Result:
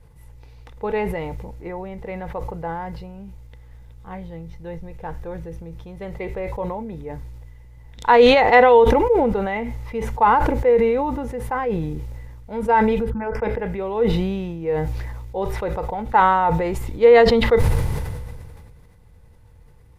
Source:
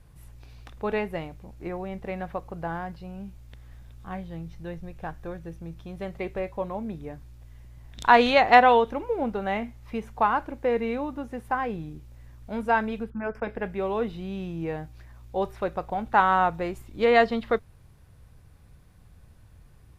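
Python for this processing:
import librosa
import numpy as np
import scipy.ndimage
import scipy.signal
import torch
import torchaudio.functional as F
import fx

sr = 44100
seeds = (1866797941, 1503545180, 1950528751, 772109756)

y = fx.low_shelf(x, sr, hz=130.0, db=5.0)
y = fx.small_body(y, sr, hz=(480.0, 880.0, 2000.0), ring_ms=45, db=12)
y = fx.sustainer(y, sr, db_per_s=28.0)
y = y * librosa.db_to_amplitude(-2.0)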